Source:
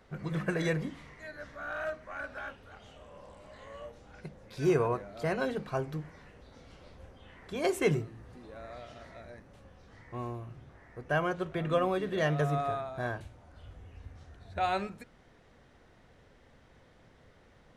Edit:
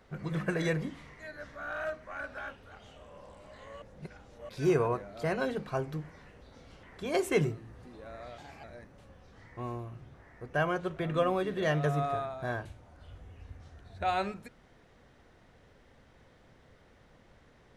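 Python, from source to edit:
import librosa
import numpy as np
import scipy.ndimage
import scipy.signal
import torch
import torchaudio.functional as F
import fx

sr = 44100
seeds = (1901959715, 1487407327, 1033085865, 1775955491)

y = fx.edit(x, sr, fx.reverse_span(start_s=3.82, length_s=0.67),
    fx.cut(start_s=6.83, length_s=0.5),
    fx.speed_span(start_s=8.88, length_s=0.31, speed=1.21), tone=tone)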